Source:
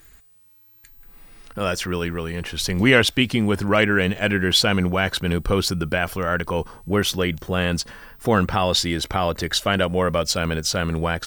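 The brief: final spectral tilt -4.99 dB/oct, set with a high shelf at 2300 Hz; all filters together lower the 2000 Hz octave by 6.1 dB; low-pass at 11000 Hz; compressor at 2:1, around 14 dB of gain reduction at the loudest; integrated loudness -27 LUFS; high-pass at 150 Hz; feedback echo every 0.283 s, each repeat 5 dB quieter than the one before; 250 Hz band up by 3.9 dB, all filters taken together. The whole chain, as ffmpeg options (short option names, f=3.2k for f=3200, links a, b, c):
-af "highpass=150,lowpass=11k,equalizer=f=250:t=o:g=6.5,equalizer=f=2k:t=o:g=-4,highshelf=f=2.3k:g=-8.5,acompressor=threshold=-36dB:ratio=2,aecho=1:1:283|566|849|1132|1415|1698|1981:0.562|0.315|0.176|0.0988|0.0553|0.031|0.0173,volume=4dB"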